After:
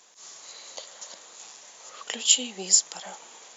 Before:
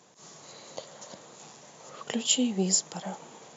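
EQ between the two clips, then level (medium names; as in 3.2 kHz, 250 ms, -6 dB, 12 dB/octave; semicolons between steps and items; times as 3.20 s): high-pass 280 Hz 12 dB/octave; tilt shelf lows -7.5 dB; -1.0 dB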